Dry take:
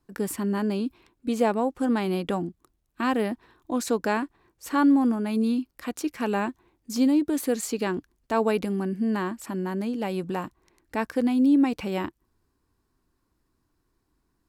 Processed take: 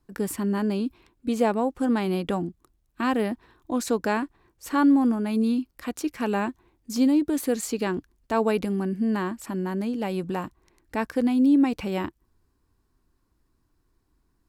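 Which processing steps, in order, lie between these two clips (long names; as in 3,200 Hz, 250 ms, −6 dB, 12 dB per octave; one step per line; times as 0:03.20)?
low-shelf EQ 90 Hz +7 dB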